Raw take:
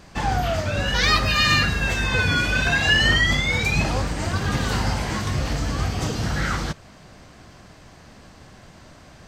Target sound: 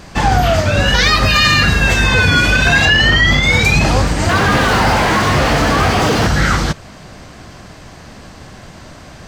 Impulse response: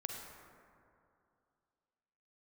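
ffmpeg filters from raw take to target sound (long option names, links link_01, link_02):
-filter_complex "[0:a]asettb=1/sr,asplit=3[link_01][link_02][link_03];[link_01]atrim=end=2.854[link_04];[link_02]atrim=start=2.85:end=3.43,asetpts=PTS-STARTPTS,afade=type=in:duration=0.004:curve=qsin,afade=type=out:start_time=0.576:duration=0.004:curve=qsin,equalizer=frequency=9600:width_type=o:width=0.91:gain=-11[link_05];[link_03]atrim=start=3.426[link_06];[link_04][link_05]acrossfade=duration=0.004:curve1=hsin:curve2=qsin[link_07];[link_07][link_06]acrossfade=duration=0.004:curve1=qsin:curve2=hsin,asettb=1/sr,asplit=3[link_08][link_09][link_10];[link_08]atrim=end=4.294[link_11];[link_09]atrim=start=4.29:end=6.27,asetpts=PTS-STARTPTS,afade=type=in:duration=0.004:curve=qsin,afade=type=out:start_time=1.976:duration=0.004:curve=qsin,asplit=2[link_12][link_13];[link_13]highpass=frequency=720:poles=1,volume=30dB,asoftclip=type=tanh:threshold=-15dB[link_14];[link_12][link_14]amix=inputs=2:normalize=0,lowpass=frequency=1400:poles=1,volume=-6dB[link_15];[link_10]atrim=start=6.266[link_16];[link_11][link_15]acrossfade=duration=0.004:curve1=hsin:curve2=qsin[link_17];[link_17][link_16]acrossfade=duration=0.004:curve1=qsin:curve2=hsin,alimiter=level_in=11.5dB:limit=-1dB:release=50:level=0:latency=1,volume=-1dB"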